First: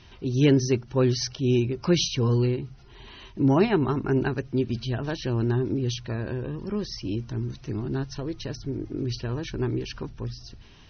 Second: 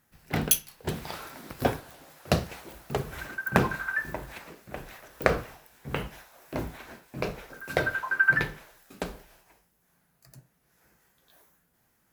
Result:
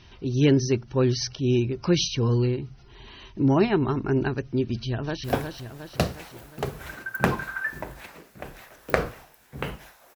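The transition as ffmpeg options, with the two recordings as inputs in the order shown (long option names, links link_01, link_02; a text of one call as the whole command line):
ffmpeg -i cue0.wav -i cue1.wav -filter_complex "[0:a]apad=whole_dur=10.15,atrim=end=10.15,atrim=end=5.242[link_01];[1:a]atrim=start=1.558:end=6.47[link_02];[link_01][link_02]acrossfade=duration=0.004:curve1=hsin:curve2=hsin,asplit=2[link_03][link_04];[link_04]afade=type=in:start_time=4.87:duration=0.01,afade=type=out:start_time=5.24:duration=0.01,aecho=0:1:360|720|1080|1440|1800|2160|2520:0.530884|0.291986|0.160593|0.0883259|0.0485792|0.0267186|0.0146952[link_05];[link_03][link_05]amix=inputs=2:normalize=0" out.wav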